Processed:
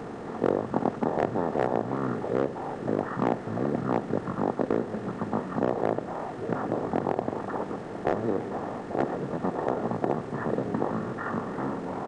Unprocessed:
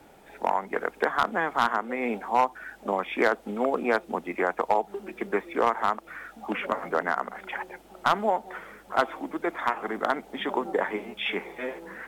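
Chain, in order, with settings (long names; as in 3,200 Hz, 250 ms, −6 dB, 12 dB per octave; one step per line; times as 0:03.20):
compressor on every frequency bin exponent 0.4
pitch shifter −11 semitones
feedback echo with a swinging delay time 340 ms, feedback 48%, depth 219 cents, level −16.5 dB
level −7.5 dB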